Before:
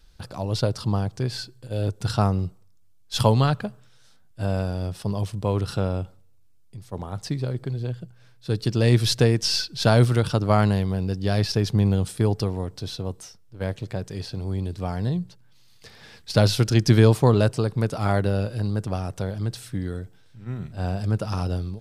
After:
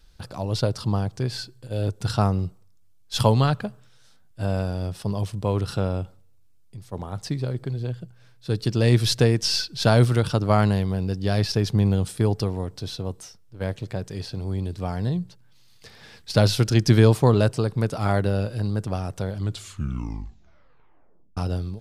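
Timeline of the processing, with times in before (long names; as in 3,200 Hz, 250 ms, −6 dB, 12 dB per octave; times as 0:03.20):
0:19.31: tape stop 2.06 s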